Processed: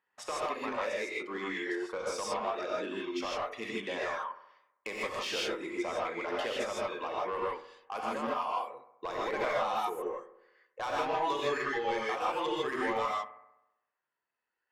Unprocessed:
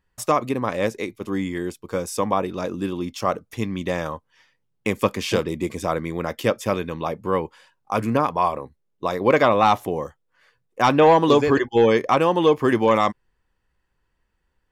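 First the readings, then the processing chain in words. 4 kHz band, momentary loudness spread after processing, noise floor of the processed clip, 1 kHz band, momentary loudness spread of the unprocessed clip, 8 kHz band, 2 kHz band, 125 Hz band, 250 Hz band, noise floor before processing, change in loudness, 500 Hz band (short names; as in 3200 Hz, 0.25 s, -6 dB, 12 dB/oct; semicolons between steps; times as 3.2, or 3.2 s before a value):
-7.0 dB, 8 LU, under -85 dBFS, -11.5 dB, 12 LU, -9.0 dB, -7.5 dB, -25.0 dB, -16.5 dB, -72 dBFS, -12.5 dB, -13.5 dB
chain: reverb removal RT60 1.8 s; HPF 560 Hz 12 dB/oct; low-pass opened by the level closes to 2700 Hz, open at -18 dBFS; compressor 4:1, threshold -30 dBFS, peak gain reduction 14 dB; soft clip -27 dBFS, distortion -13 dB; analogue delay 65 ms, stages 1024, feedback 60%, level -15 dB; non-linear reverb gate 0.18 s rising, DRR -5 dB; gain -3 dB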